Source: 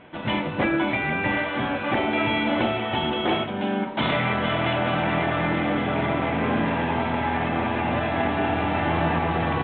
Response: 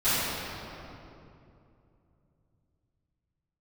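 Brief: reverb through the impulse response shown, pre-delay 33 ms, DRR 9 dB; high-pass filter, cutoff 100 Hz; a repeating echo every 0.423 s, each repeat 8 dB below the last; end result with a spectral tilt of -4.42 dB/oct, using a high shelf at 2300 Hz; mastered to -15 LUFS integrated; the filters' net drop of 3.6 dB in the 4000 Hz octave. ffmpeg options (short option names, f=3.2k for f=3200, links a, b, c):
-filter_complex "[0:a]highpass=100,highshelf=f=2.3k:g=3.5,equalizer=f=4k:t=o:g=-8.5,aecho=1:1:423|846|1269|1692|2115:0.398|0.159|0.0637|0.0255|0.0102,asplit=2[a][b];[1:a]atrim=start_sample=2205,adelay=33[c];[b][c]afir=irnorm=-1:irlink=0,volume=-24.5dB[d];[a][d]amix=inputs=2:normalize=0,volume=8dB"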